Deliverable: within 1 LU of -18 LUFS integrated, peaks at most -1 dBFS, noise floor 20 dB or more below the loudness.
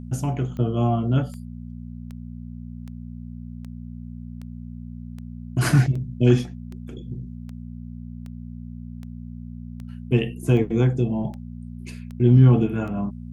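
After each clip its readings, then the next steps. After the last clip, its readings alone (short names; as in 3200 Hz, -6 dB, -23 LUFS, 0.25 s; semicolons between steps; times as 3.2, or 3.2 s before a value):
clicks 17; hum 60 Hz; harmonics up to 240 Hz; hum level -33 dBFS; loudness -21.5 LUFS; peak -4.5 dBFS; loudness target -18.0 LUFS
-> de-click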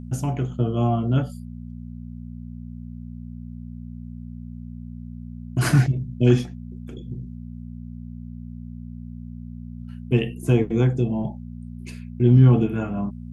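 clicks 0; hum 60 Hz; harmonics up to 240 Hz; hum level -33 dBFS
-> de-hum 60 Hz, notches 4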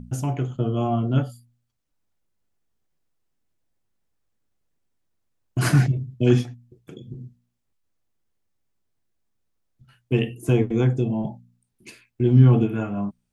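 hum none; loudness -22.0 LUFS; peak -4.0 dBFS; loudness target -18.0 LUFS
-> gain +4 dB; limiter -1 dBFS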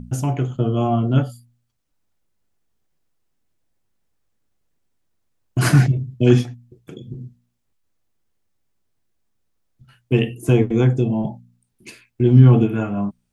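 loudness -18.0 LUFS; peak -1.0 dBFS; noise floor -71 dBFS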